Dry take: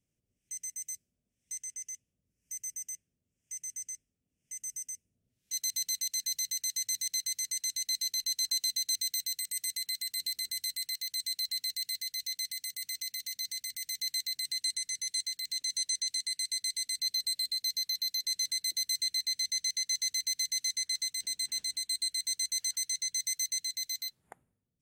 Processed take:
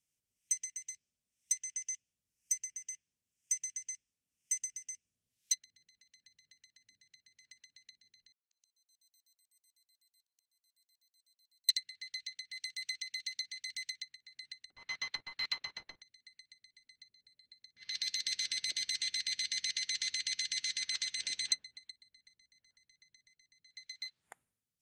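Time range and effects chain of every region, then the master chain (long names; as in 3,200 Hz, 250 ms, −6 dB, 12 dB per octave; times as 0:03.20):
0:08.32–0:11.69: volume swells 612 ms + upward compression, threshold −55 dBFS + gate with flip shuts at −42 dBFS, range −41 dB
0:14.70–0:16.02: each half-wave held at its own peak + parametric band 9,100 Hz −13.5 dB 1.4 octaves
0:17.76–0:21.52: low-pass filter 3,200 Hz + hum removal 158.5 Hz, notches 39 + every bin compressed towards the loudest bin 2 to 1
whole clip: tilt shelving filter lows −8.5 dB, about 1,200 Hz; treble cut that deepens with the level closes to 470 Hz, closed at −22 dBFS; expander for the loud parts 1.5 to 1, over −54 dBFS; level +6.5 dB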